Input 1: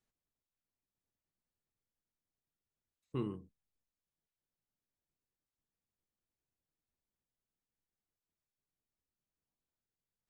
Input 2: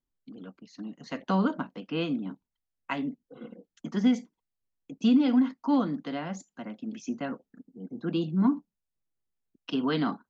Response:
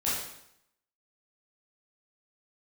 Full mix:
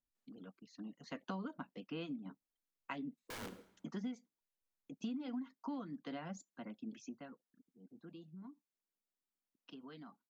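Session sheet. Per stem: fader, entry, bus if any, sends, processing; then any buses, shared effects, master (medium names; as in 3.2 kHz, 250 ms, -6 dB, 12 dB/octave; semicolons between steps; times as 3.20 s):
-5.5 dB, 0.15 s, send -16 dB, steep high-pass 190 Hz 72 dB/octave; integer overflow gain 37.5 dB
6.94 s -8.5 dB -> 7.42 s -19 dB, 0.00 s, no send, reverb removal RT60 0.52 s; compression 6:1, threshold -31 dBFS, peak gain reduction 12.5 dB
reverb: on, RT60 0.75 s, pre-delay 13 ms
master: none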